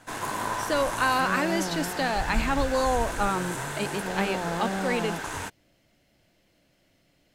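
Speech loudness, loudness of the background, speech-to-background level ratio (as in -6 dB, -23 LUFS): -28.0 LUFS, -31.5 LUFS, 3.5 dB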